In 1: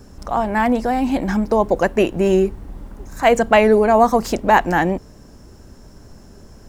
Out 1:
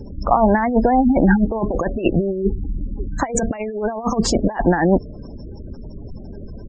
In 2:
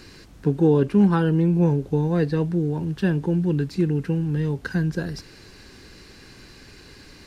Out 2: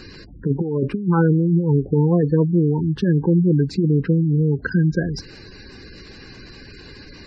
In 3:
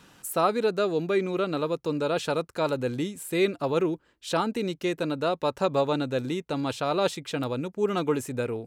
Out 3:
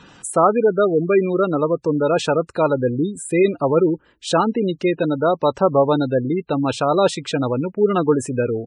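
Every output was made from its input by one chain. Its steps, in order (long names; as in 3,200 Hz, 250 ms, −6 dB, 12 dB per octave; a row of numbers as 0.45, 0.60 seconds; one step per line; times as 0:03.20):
downsampling to 22,050 Hz
compressor whose output falls as the input rises −20 dBFS, ratio −0.5
gate on every frequency bin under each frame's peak −20 dB strong
loudness normalisation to −19 LKFS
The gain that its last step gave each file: +4.0, +4.5, +9.0 decibels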